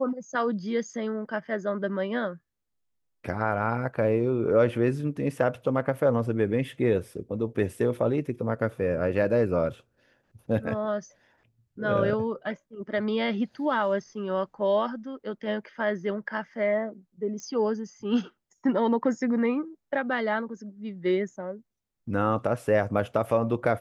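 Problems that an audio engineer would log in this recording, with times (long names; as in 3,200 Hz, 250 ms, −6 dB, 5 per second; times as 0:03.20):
0:17.40: click −28 dBFS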